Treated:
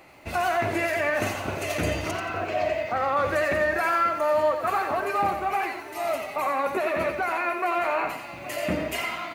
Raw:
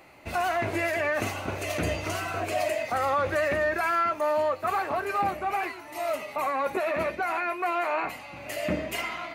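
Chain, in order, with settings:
0:02.11–0:03.17: high-frequency loss of the air 170 metres
slap from a distant wall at 140 metres, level −16 dB
feedback echo at a low word length 88 ms, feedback 35%, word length 9 bits, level −8 dB
level +1.5 dB

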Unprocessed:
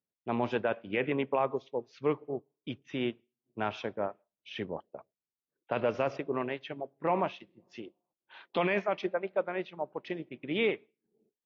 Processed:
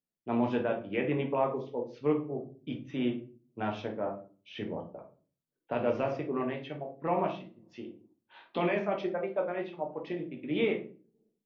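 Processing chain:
parametric band 230 Hz +5 dB 2.5 octaves
on a send: convolution reverb RT60 0.40 s, pre-delay 7 ms, DRR 1 dB
on the sum: level −5.5 dB

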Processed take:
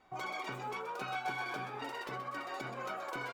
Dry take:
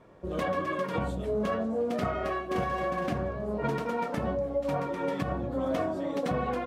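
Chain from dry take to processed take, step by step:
tuned comb filter 380 Hz, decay 0.18 s, harmonics all, mix 80%
echo with shifted repeats 254 ms, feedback 43%, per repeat +58 Hz, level −9.5 dB
wrong playback speed 7.5 ips tape played at 15 ips

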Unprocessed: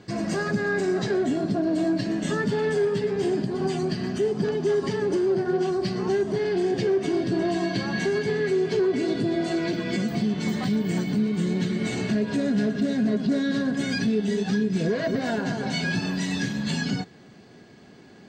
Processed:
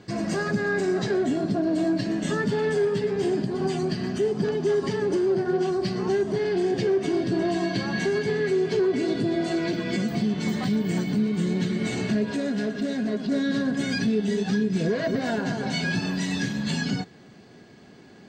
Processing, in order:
0:12.31–0:13.32: parametric band 120 Hz −9 dB 1.7 octaves

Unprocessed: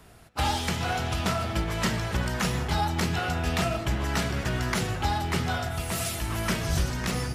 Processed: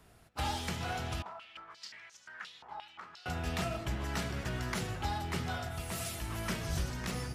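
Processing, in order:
0:01.22–0:03.26: band-pass on a step sequencer 5.7 Hz 930–6,300 Hz
level −8.5 dB

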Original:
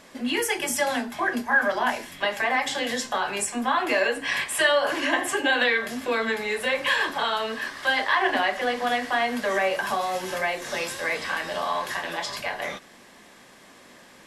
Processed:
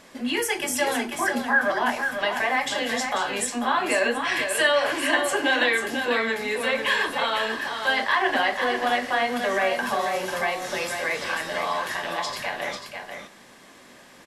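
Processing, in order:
single-tap delay 492 ms −6.5 dB

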